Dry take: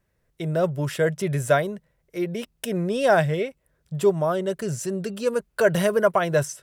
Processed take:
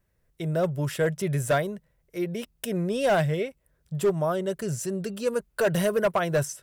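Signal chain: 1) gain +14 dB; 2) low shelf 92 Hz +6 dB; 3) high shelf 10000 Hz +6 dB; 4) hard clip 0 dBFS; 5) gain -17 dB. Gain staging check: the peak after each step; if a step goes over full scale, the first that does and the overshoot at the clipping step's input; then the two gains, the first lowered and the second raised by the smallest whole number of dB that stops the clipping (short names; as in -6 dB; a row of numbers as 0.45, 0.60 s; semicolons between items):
+8.0, +8.0, +8.0, 0.0, -17.0 dBFS; step 1, 8.0 dB; step 1 +6 dB, step 5 -9 dB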